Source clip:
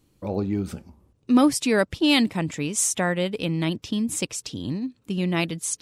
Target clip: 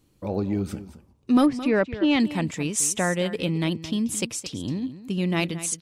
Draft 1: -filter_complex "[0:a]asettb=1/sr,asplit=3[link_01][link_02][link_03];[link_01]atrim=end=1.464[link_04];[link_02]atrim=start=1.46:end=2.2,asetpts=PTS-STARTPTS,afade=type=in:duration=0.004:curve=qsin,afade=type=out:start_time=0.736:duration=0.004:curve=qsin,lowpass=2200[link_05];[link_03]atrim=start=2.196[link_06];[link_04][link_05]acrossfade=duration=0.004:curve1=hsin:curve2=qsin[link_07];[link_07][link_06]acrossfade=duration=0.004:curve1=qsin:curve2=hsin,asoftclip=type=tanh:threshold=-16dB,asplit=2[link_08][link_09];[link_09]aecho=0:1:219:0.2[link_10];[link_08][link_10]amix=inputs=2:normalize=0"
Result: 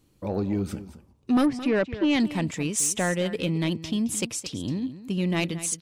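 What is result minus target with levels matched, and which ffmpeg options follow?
soft clipping: distortion +10 dB
-filter_complex "[0:a]asettb=1/sr,asplit=3[link_01][link_02][link_03];[link_01]atrim=end=1.464[link_04];[link_02]atrim=start=1.46:end=2.2,asetpts=PTS-STARTPTS,afade=type=in:duration=0.004:curve=qsin,afade=type=out:start_time=0.736:duration=0.004:curve=qsin,lowpass=2200[link_05];[link_03]atrim=start=2.196[link_06];[link_04][link_05]acrossfade=duration=0.004:curve1=hsin:curve2=qsin[link_07];[link_07][link_06]acrossfade=duration=0.004:curve1=qsin:curve2=hsin,asoftclip=type=tanh:threshold=-8.5dB,asplit=2[link_08][link_09];[link_09]aecho=0:1:219:0.2[link_10];[link_08][link_10]amix=inputs=2:normalize=0"

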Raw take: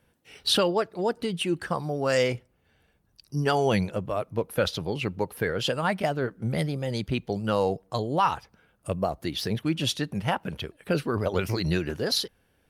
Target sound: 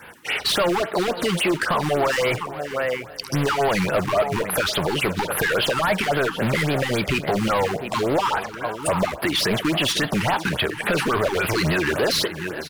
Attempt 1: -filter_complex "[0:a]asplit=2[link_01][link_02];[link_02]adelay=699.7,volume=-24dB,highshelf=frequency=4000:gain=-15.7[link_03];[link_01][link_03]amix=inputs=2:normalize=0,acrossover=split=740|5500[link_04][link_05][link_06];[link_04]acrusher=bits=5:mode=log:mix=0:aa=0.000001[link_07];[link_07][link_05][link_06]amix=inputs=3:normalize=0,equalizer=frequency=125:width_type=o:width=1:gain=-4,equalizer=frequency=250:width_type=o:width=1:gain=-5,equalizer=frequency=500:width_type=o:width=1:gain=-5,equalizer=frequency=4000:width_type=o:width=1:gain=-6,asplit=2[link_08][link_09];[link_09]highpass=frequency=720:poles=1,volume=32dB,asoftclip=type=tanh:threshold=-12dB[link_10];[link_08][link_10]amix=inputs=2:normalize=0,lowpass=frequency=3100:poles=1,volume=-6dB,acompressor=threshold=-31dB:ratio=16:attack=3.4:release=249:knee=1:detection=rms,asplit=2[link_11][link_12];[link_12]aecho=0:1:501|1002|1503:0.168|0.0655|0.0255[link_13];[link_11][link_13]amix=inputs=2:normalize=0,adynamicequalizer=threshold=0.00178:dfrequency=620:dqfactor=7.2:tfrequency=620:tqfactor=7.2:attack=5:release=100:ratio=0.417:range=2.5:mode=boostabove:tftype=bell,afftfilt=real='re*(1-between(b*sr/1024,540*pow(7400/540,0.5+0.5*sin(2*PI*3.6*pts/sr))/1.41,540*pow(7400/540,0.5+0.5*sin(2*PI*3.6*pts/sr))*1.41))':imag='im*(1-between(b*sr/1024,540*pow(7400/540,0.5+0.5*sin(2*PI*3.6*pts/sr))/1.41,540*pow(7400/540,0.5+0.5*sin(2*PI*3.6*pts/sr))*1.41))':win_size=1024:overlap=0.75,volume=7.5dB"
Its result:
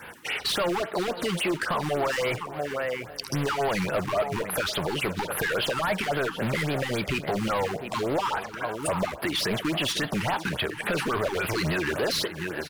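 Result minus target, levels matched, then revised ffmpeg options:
downward compressor: peak gain reduction +5.5 dB
-filter_complex "[0:a]asplit=2[link_01][link_02];[link_02]adelay=699.7,volume=-24dB,highshelf=frequency=4000:gain=-15.7[link_03];[link_01][link_03]amix=inputs=2:normalize=0,acrossover=split=740|5500[link_04][link_05][link_06];[link_04]acrusher=bits=5:mode=log:mix=0:aa=0.000001[link_07];[link_07][link_05][link_06]amix=inputs=3:normalize=0,equalizer=frequency=125:width_type=o:width=1:gain=-4,equalizer=frequency=250:width_type=o:width=1:gain=-5,equalizer=frequency=500:width_type=o:width=1:gain=-5,equalizer=frequency=4000:width_type=o:width=1:gain=-6,asplit=2[link_08][link_09];[link_09]highpass=frequency=720:poles=1,volume=32dB,asoftclip=type=tanh:threshold=-12dB[link_10];[link_08][link_10]amix=inputs=2:normalize=0,lowpass=frequency=3100:poles=1,volume=-6dB,acompressor=threshold=-25dB:ratio=16:attack=3.4:release=249:knee=1:detection=rms,asplit=2[link_11][link_12];[link_12]aecho=0:1:501|1002|1503:0.168|0.0655|0.0255[link_13];[link_11][link_13]amix=inputs=2:normalize=0,adynamicequalizer=threshold=0.00178:dfrequency=620:dqfactor=7.2:tfrequency=620:tqfactor=7.2:attack=5:release=100:ratio=0.417:range=2.5:mode=boostabove:tftype=bell,afftfilt=real='re*(1-between(b*sr/1024,540*pow(7400/540,0.5+0.5*sin(2*PI*3.6*pts/sr))/1.41,540*pow(7400/540,0.5+0.5*sin(2*PI*3.6*pts/sr))*1.41))':imag='im*(1-between(b*sr/1024,540*pow(7400/540,0.5+0.5*sin(2*PI*3.6*pts/sr))/1.41,540*pow(7400/540,0.5+0.5*sin(2*PI*3.6*pts/sr))*1.41))':win_size=1024:overlap=0.75,volume=7.5dB"

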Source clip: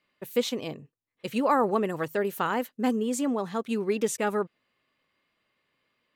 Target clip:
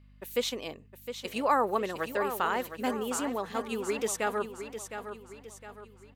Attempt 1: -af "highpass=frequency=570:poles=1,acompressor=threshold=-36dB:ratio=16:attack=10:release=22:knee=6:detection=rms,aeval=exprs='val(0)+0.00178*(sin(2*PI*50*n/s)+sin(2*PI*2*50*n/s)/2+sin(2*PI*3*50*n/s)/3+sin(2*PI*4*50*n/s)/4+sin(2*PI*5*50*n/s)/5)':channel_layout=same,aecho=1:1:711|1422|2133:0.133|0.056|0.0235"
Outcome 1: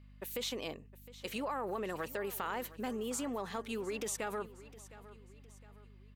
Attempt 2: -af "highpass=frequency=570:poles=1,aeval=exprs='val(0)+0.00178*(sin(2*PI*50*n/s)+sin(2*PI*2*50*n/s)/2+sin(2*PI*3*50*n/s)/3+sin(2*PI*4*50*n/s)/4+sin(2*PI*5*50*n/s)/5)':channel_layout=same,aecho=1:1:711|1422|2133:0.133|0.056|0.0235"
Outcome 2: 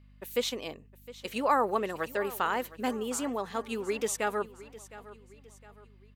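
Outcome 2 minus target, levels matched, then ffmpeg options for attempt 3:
echo-to-direct −8 dB
-af "highpass=frequency=570:poles=1,aeval=exprs='val(0)+0.00178*(sin(2*PI*50*n/s)+sin(2*PI*2*50*n/s)/2+sin(2*PI*3*50*n/s)/3+sin(2*PI*4*50*n/s)/4+sin(2*PI*5*50*n/s)/5)':channel_layout=same,aecho=1:1:711|1422|2133|2844|3555:0.335|0.141|0.0591|0.0248|0.0104"

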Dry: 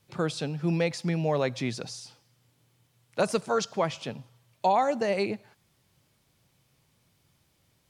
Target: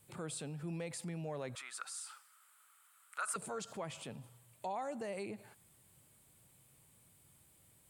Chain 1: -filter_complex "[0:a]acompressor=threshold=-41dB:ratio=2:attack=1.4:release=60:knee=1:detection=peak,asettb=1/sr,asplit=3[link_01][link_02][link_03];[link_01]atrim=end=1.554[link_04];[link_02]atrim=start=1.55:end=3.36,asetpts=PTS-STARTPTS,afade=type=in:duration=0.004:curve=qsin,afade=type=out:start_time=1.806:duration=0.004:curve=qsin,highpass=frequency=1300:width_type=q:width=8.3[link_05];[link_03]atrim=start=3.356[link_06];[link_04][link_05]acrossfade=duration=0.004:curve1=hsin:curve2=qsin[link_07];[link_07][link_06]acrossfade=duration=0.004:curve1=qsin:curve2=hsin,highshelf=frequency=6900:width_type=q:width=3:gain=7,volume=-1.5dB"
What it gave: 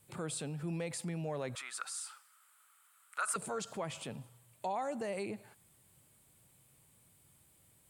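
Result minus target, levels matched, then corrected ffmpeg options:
downward compressor: peak gain reduction −3.5 dB
-filter_complex "[0:a]acompressor=threshold=-48dB:ratio=2:attack=1.4:release=60:knee=1:detection=peak,asettb=1/sr,asplit=3[link_01][link_02][link_03];[link_01]atrim=end=1.554[link_04];[link_02]atrim=start=1.55:end=3.36,asetpts=PTS-STARTPTS,afade=type=in:duration=0.004:curve=qsin,afade=type=out:start_time=1.806:duration=0.004:curve=qsin,highpass=frequency=1300:width_type=q:width=8.3[link_05];[link_03]atrim=start=3.356[link_06];[link_04][link_05]acrossfade=duration=0.004:curve1=hsin:curve2=qsin[link_07];[link_07][link_06]acrossfade=duration=0.004:curve1=qsin:curve2=hsin,highshelf=frequency=6900:width_type=q:width=3:gain=7,volume=-1.5dB"

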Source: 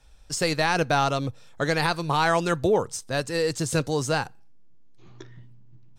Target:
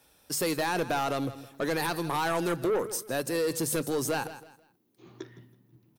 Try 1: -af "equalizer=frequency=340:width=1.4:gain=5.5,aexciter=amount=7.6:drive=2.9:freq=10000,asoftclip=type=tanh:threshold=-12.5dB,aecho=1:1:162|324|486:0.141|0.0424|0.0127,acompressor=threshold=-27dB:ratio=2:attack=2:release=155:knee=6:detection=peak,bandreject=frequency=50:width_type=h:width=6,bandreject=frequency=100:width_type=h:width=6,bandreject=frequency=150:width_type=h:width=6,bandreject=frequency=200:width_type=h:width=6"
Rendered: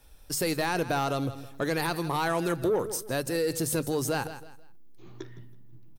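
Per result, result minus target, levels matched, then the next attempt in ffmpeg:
soft clipping: distortion −9 dB; 125 Hz band +3.5 dB
-af "equalizer=frequency=340:width=1.4:gain=5.5,aexciter=amount=7.6:drive=2.9:freq=10000,asoftclip=type=tanh:threshold=-19dB,aecho=1:1:162|324|486:0.141|0.0424|0.0127,acompressor=threshold=-27dB:ratio=2:attack=2:release=155:knee=6:detection=peak,bandreject=frequency=50:width_type=h:width=6,bandreject=frequency=100:width_type=h:width=6,bandreject=frequency=150:width_type=h:width=6,bandreject=frequency=200:width_type=h:width=6"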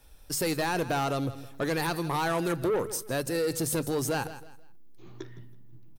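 125 Hz band +3.5 dB
-af "highpass=150,equalizer=frequency=340:width=1.4:gain=5.5,aexciter=amount=7.6:drive=2.9:freq=10000,asoftclip=type=tanh:threshold=-19dB,aecho=1:1:162|324|486:0.141|0.0424|0.0127,acompressor=threshold=-27dB:ratio=2:attack=2:release=155:knee=6:detection=peak,bandreject=frequency=50:width_type=h:width=6,bandreject=frequency=100:width_type=h:width=6,bandreject=frequency=150:width_type=h:width=6,bandreject=frequency=200:width_type=h:width=6"

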